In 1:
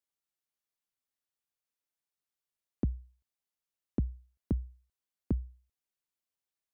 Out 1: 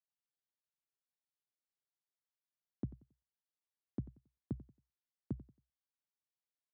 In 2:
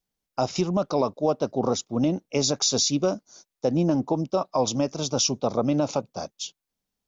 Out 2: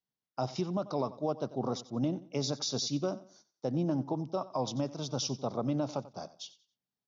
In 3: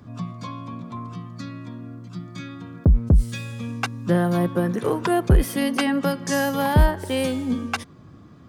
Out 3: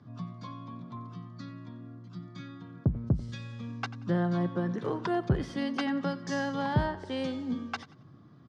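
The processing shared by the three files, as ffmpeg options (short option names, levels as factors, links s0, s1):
-af "highpass=110,equalizer=f=130:t=q:w=4:g=7,equalizer=f=500:t=q:w=4:g=-3,equalizer=f=2500:t=q:w=4:g=-6,lowpass=f=5500:w=0.5412,lowpass=f=5500:w=1.3066,aecho=1:1:91|182|273:0.141|0.041|0.0119,volume=0.376"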